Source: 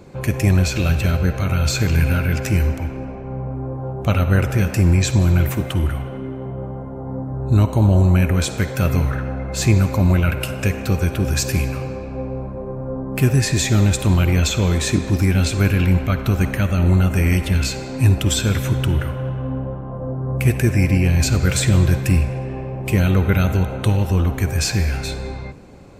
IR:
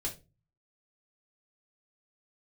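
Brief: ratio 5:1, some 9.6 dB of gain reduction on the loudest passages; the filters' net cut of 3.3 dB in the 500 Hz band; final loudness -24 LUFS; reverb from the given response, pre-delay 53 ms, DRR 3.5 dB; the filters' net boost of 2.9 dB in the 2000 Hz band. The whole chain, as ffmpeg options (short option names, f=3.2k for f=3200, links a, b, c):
-filter_complex "[0:a]equalizer=f=500:t=o:g=-4.5,equalizer=f=2k:t=o:g=4,acompressor=threshold=-22dB:ratio=5,asplit=2[a][b];[1:a]atrim=start_sample=2205,adelay=53[c];[b][c]afir=irnorm=-1:irlink=0,volume=-5dB[d];[a][d]amix=inputs=2:normalize=0,volume=-0.5dB"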